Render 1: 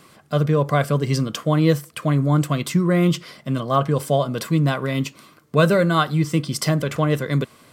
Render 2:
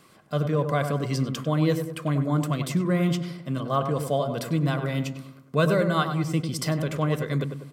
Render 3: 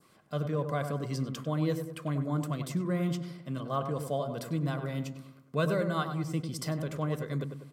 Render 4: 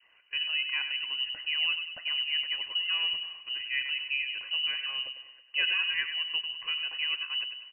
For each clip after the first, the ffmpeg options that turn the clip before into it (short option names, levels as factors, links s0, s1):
-filter_complex "[0:a]asplit=2[s0][s1];[s1]adelay=98,lowpass=f=1500:p=1,volume=0.473,asplit=2[s2][s3];[s3]adelay=98,lowpass=f=1500:p=1,volume=0.52,asplit=2[s4][s5];[s5]adelay=98,lowpass=f=1500:p=1,volume=0.52,asplit=2[s6][s7];[s7]adelay=98,lowpass=f=1500:p=1,volume=0.52,asplit=2[s8][s9];[s9]adelay=98,lowpass=f=1500:p=1,volume=0.52,asplit=2[s10][s11];[s11]adelay=98,lowpass=f=1500:p=1,volume=0.52[s12];[s0][s2][s4][s6][s8][s10][s12]amix=inputs=7:normalize=0,volume=0.501"
-af "adynamicequalizer=threshold=0.00562:dfrequency=2600:dqfactor=1.2:tfrequency=2600:tqfactor=1.2:attack=5:release=100:ratio=0.375:range=2.5:mode=cutabove:tftype=bell,volume=0.447"
-filter_complex "[0:a]lowpass=f=2600:t=q:w=0.5098,lowpass=f=2600:t=q:w=0.6013,lowpass=f=2600:t=q:w=0.9,lowpass=f=2600:t=q:w=2.563,afreqshift=-3100,asplit=2[s0][s1];[s1]adelay=323,lowpass=f=1600:p=1,volume=0.0891,asplit=2[s2][s3];[s3]adelay=323,lowpass=f=1600:p=1,volume=0.53,asplit=2[s4][s5];[s5]adelay=323,lowpass=f=1600:p=1,volume=0.53,asplit=2[s6][s7];[s7]adelay=323,lowpass=f=1600:p=1,volume=0.53[s8];[s0][s2][s4][s6][s8]amix=inputs=5:normalize=0"